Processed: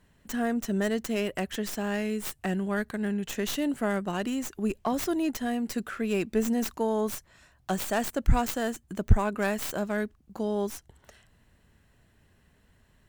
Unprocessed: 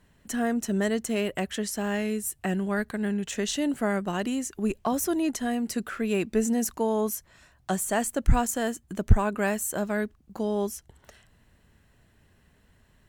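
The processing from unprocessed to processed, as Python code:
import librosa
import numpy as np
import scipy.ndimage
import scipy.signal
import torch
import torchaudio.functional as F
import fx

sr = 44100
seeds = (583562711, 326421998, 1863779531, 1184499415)

y = fx.tracing_dist(x, sr, depth_ms=0.14)
y = y * 10.0 ** (-1.5 / 20.0)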